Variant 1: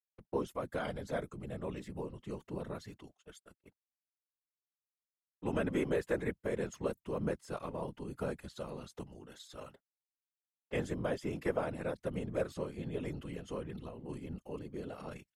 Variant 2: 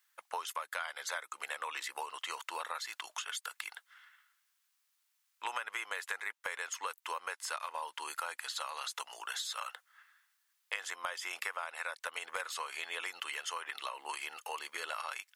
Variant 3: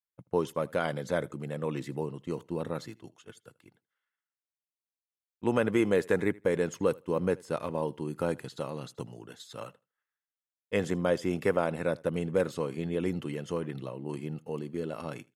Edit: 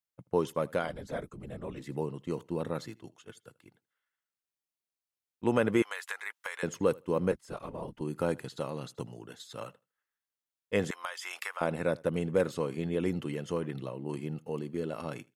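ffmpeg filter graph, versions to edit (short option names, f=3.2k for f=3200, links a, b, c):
-filter_complex "[0:a]asplit=2[a][b];[1:a]asplit=2[c][d];[2:a]asplit=5[e][f][g][h][i];[e]atrim=end=0.99[j];[a]atrim=start=0.75:end=1.95[k];[f]atrim=start=1.71:end=5.822[l];[c]atrim=start=5.818:end=6.632[m];[g]atrim=start=6.628:end=7.322[n];[b]atrim=start=7.318:end=8.012[o];[h]atrim=start=8.008:end=10.912[p];[d]atrim=start=10.908:end=11.612[q];[i]atrim=start=11.608[r];[j][k]acrossfade=d=0.24:c1=tri:c2=tri[s];[s][l]acrossfade=d=0.24:c1=tri:c2=tri[t];[t][m]acrossfade=d=0.004:c1=hsin:c2=hsin[u];[u][n]acrossfade=d=0.004:c1=hsin:c2=hsin[v];[v][o]acrossfade=d=0.004:c1=hsin:c2=hsin[w];[w][p]acrossfade=d=0.004:c1=hsin:c2=hsin[x];[x][q]acrossfade=d=0.004:c1=hsin:c2=hsin[y];[y][r]acrossfade=d=0.004:c1=hsin:c2=hsin"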